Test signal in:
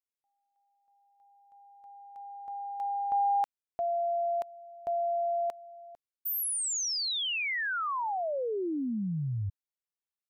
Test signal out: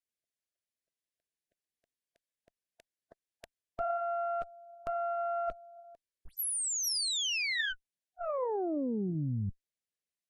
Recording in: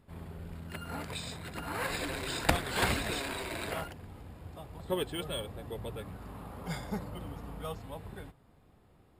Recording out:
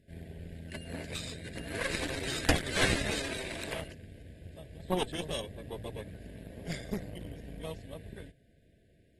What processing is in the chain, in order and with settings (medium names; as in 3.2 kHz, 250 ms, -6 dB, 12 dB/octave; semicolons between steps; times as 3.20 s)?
brick-wall FIR band-stop 700–1500 Hz; in parallel at -6 dB: saturation -24.5 dBFS; on the sum: Chebyshev shaper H 2 -7 dB, 4 -45 dB, 6 -10 dB, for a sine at -9.5 dBFS; trim -5 dB; AAC 32 kbps 48 kHz